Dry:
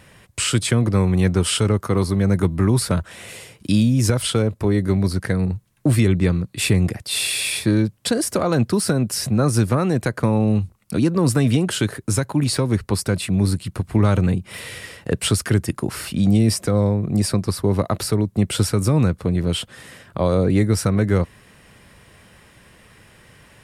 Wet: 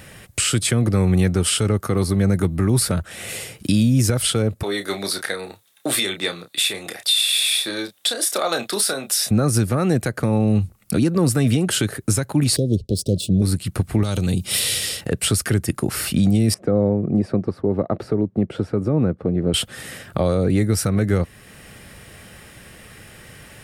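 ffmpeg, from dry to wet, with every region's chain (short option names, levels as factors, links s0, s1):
-filter_complex "[0:a]asettb=1/sr,asplit=3[s0][s1][s2];[s0]atrim=end=4.634[s3];[s1]atrim=start=4.63:end=9.31,asetpts=PTS-STARTPTS,afade=t=in:d=0.004:c=qsin,afade=t=out:st=4.676:d=0.004:c=qsin,highpass=620,equalizer=f=3600:w=6.6:g=13.5,asplit=2[s4][s5];[s5]adelay=30,volume=0.398[s6];[s4][s6]amix=inputs=2:normalize=0,atrim=end_sample=206388[s7];[s2]atrim=start=9.306[s8];[s3][s7]acrossfade=d=0.004:c1=hsin:c2=qsin[s9];[s9][s8]acrossfade=d=0.004:c1=qsin:c2=hsin,asettb=1/sr,asplit=3[s10][s11][s12];[s10]atrim=end=12.564[s13];[s11]atrim=start=12.56:end=13.42,asetpts=PTS-STARTPTS,afade=t=in:d=0.004:c=qsin,afade=t=out:st=0.856:d=0.004:c=qsin,agate=range=0.0224:threshold=0.00794:ratio=3:release=100:detection=peak,adynamicsmooth=sensitivity=5:basefreq=3900,asuperstop=centerf=1400:order=12:qfactor=0.55[s14];[s12]atrim=start=13.416[s15];[s13][s14]acrossfade=d=0.004:c1=hsin:c2=qsin[s16];[s16][s15]acrossfade=d=0.004:c1=qsin:c2=hsin,asettb=1/sr,asplit=3[s17][s18][s19];[s17]atrim=end=14.034[s20];[s18]atrim=start=14.03:end=15.01,asetpts=PTS-STARTPTS,afade=t=in:d=0.004:c=qsin,afade=t=out:st=0.976:d=0.004:c=qsin,highshelf=f=2700:t=q:w=1.5:g=9.5,acompressor=threshold=0.0891:ratio=3:attack=3.2:release=140:knee=1:detection=peak[s21];[s19]atrim=start=15.006[s22];[s20][s21]acrossfade=d=0.004:c1=hsin:c2=qsin[s23];[s23][s22]acrossfade=d=0.004:c1=qsin:c2=hsin,asettb=1/sr,asplit=3[s24][s25][s26];[s24]atrim=end=16.544[s27];[s25]atrim=start=16.54:end=19.54,asetpts=PTS-STARTPTS,afade=t=in:d=0.004:c=qsin,afade=t=out:st=2.996:d=0.004:c=qsin,bandpass=f=380:t=q:w=0.68,aemphasis=mode=reproduction:type=cd[s28];[s26]atrim=start=19.536[s29];[s27][s28]acrossfade=d=0.004:c1=hsin:c2=qsin[s30];[s30][s29]acrossfade=d=0.004:c1=qsin:c2=hsin,highshelf=f=11000:g=9,bandreject=f=1000:w=6.8,alimiter=limit=0.178:level=0:latency=1:release=440,volume=2"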